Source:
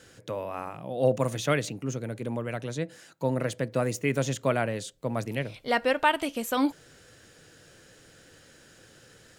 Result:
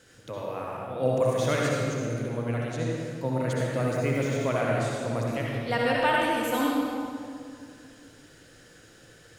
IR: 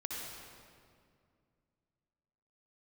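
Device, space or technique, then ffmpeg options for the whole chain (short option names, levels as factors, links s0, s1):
stairwell: -filter_complex "[0:a]asettb=1/sr,asplit=3[s0][s1][s2];[s0]atrim=end=3.814[s3];[s1]atrim=start=3.81:end=4.46,asetpts=PTS-STARTPTS,afade=t=in:d=0.004:c=qsin,afade=t=out:st=0.646:d=0.004:c=qsin,deesser=0.9[s4];[s2]atrim=start=4.456[s5];[s3][s4]acrossfade=d=0.004:c1=hsin:c2=qsin[s6];[s6][s5]acrossfade=d=0.004:c1=qsin:c2=hsin[s7];[1:a]atrim=start_sample=2205[s8];[s7][s8]afir=irnorm=-1:irlink=0"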